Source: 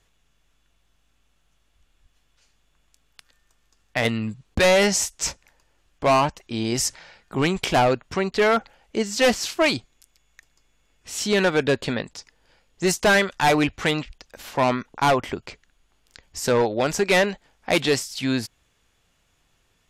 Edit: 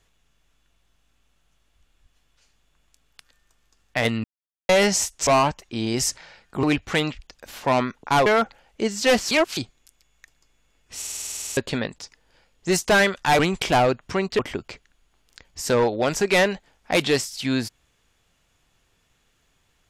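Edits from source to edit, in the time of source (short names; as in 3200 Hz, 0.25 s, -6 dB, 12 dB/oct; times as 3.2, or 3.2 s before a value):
4.24–4.69 mute
5.27–6.05 cut
7.41–8.41 swap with 13.54–15.17
9.46–9.72 reverse
11.12 stutter in place 0.05 s, 12 plays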